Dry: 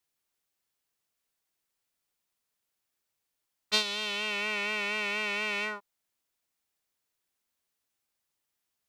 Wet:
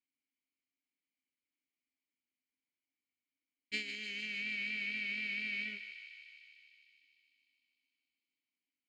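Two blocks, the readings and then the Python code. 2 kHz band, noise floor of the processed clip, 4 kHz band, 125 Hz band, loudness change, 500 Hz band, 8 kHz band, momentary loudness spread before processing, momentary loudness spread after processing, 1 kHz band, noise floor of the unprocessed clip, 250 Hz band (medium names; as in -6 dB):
-5.5 dB, under -85 dBFS, -11.5 dB, no reading, -8.0 dB, -21.0 dB, -17.0 dB, 4 LU, 16 LU, under -30 dB, -83 dBFS, -7.0 dB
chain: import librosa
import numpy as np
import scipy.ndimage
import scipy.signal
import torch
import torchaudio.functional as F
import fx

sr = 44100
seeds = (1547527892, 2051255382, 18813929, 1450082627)

y = fx.lower_of_two(x, sr, delay_ms=0.42)
y = fx.vowel_filter(y, sr, vowel='i')
y = fx.echo_thinned(y, sr, ms=151, feedback_pct=79, hz=1100.0, wet_db=-9.0)
y = y * librosa.db_to_amplitude(4.5)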